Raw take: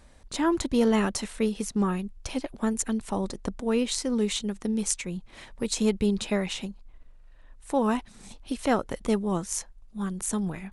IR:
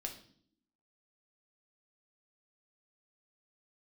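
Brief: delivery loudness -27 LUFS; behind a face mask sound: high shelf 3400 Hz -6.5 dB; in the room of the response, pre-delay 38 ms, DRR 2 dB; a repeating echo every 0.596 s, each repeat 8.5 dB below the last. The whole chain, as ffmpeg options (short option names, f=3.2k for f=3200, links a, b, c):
-filter_complex "[0:a]aecho=1:1:596|1192|1788|2384:0.376|0.143|0.0543|0.0206,asplit=2[a][b];[1:a]atrim=start_sample=2205,adelay=38[c];[b][c]afir=irnorm=-1:irlink=0,volume=-0.5dB[d];[a][d]amix=inputs=2:normalize=0,highshelf=f=3.4k:g=-6.5,volume=-0.5dB"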